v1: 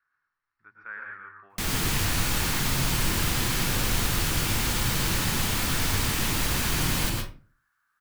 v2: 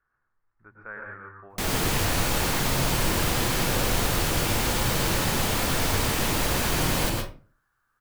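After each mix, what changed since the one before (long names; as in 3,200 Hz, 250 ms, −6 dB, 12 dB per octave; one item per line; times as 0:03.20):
speech: add spectral tilt −4 dB per octave
master: add parametric band 570 Hz +9 dB 1.4 octaves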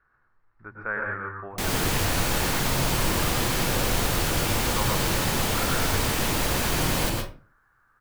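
speech +9.5 dB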